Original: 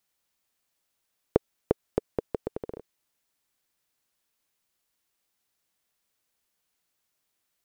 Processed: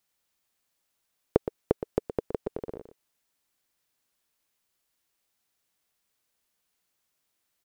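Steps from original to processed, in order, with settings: delay 118 ms -10.5 dB

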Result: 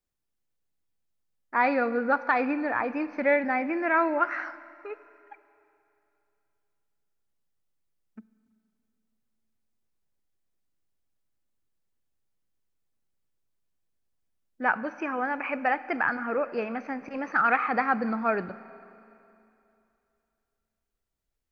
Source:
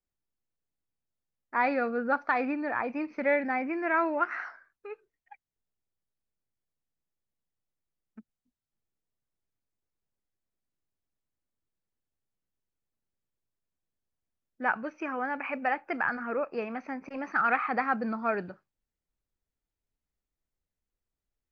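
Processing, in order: Schroeder reverb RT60 2.8 s, combs from 32 ms, DRR 15.5 dB; trim +3 dB

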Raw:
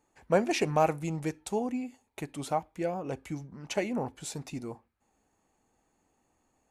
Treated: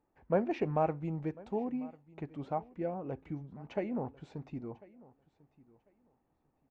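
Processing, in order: tape spacing loss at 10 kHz 45 dB; on a send: feedback delay 1046 ms, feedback 19%, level -22 dB; on the sum: trim -2 dB

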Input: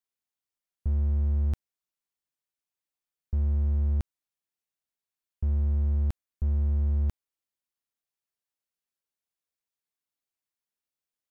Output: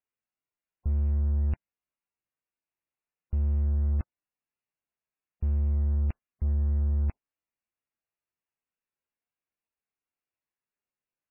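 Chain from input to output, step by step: MP3 8 kbps 11.025 kHz

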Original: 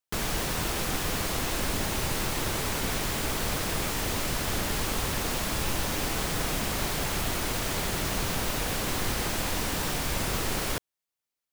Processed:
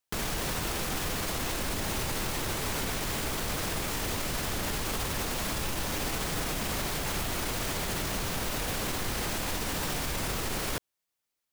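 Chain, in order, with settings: peak limiter -26 dBFS, peak gain reduction 10 dB; trim +3.5 dB

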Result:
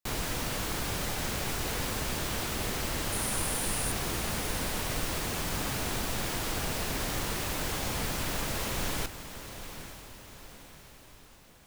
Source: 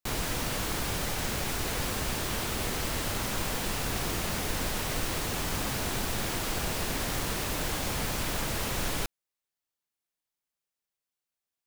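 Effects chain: 3.12–3.92 s: peaking EQ 9.6 kHz +14.5 dB 0.27 oct; echo that smears into a reverb 863 ms, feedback 49%, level -11 dB; trim -1.5 dB

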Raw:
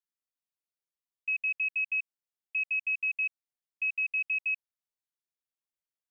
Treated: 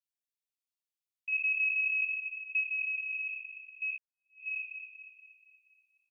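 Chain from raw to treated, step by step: spectral sustain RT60 0.83 s; steep high-pass 2.2 kHz 48 dB/octave; 1.32–2.61 s: comb 3.1 ms, depth 95%; feedback delay 238 ms, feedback 50%, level -8.5 dB; 3.98–4.48 s: fade in exponential; trim -5 dB

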